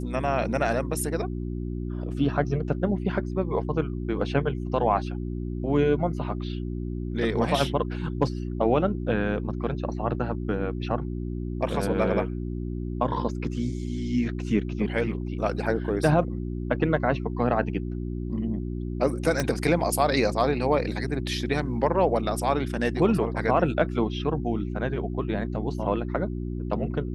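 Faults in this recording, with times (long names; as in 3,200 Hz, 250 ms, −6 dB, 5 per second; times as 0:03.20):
mains hum 60 Hz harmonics 6 −31 dBFS
0:19.40: click −11 dBFS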